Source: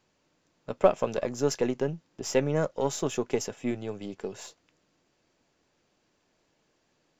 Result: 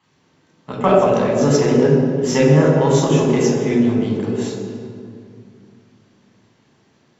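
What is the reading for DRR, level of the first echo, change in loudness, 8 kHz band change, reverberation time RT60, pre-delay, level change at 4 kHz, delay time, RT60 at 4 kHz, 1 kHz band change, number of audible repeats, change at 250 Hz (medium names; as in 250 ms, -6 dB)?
-4.0 dB, no echo, +13.5 dB, no reading, 2.3 s, 3 ms, +10.5 dB, no echo, 1.5 s, +13.0 dB, no echo, +17.0 dB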